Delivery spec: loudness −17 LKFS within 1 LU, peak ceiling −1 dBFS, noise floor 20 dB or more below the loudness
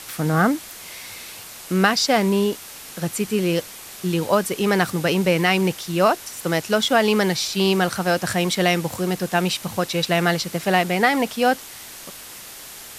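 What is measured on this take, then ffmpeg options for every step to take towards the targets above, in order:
background noise floor −39 dBFS; target noise floor −41 dBFS; integrated loudness −20.5 LKFS; sample peak −3.0 dBFS; target loudness −17.0 LKFS
→ -af "afftdn=noise_reduction=6:noise_floor=-39"
-af "volume=3.5dB,alimiter=limit=-1dB:level=0:latency=1"

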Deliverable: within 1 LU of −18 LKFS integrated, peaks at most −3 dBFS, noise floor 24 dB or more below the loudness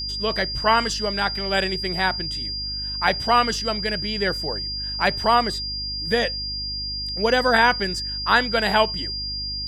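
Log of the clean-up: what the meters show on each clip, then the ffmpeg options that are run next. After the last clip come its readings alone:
mains hum 50 Hz; hum harmonics up to 300 Hz; level of the hum −33 dBFS; interfering tone 4,800 Hz; level of the tone −27 dBFS; integrated loudness −22.0 LKFS; sample peak −4.0 dBFS; target loudness −18.0 LKFS
→ -af "bandreject=frequency=50:width_type=h:width=4,bandreject=frequency=100:width_type=h:width=4,bandreject=frequency=150:width_type=h:width=4,bandreject=frequency=200:width_type=h:width=4,bandreject=frequency=250:width_type=h:width=4,bandreject=frequency=300:width_type=h:width=4"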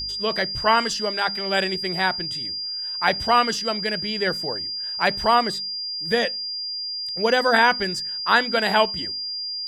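mains hum none found; interfering tone 4,800 Hz; level of the tone −27 dBFS
→ -af "bandreject=frequency=4800:width=30"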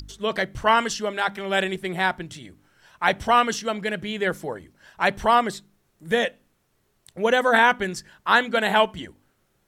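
interfering tone none found; integrated loudness −22.5 LKFS; sample peak −4.5 dBFS; target loudness −18.0 LKFS
→ -af "volume=4.5dB,alimiter=limit=-3dB:level=0:latency=1"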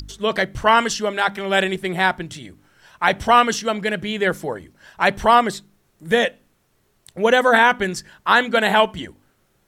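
integrated loudness −18.5 LKFS; sample peak −3.0 dBFS; background noise floor −64 dBFS

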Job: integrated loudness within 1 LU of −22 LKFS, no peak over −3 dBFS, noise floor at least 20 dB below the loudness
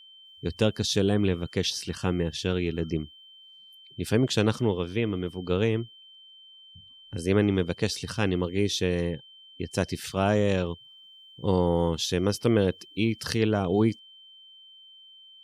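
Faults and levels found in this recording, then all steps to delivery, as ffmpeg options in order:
interfering tone 3,100 Hz; level of the tone −49 dBFS; integrated loudness −27.0 LKFS; sample peak −9.5 dBFS; target loudness −22.0 LKFS
→ -af "bandreject=frequency=3100:width=30"
-af "volume=5dB"

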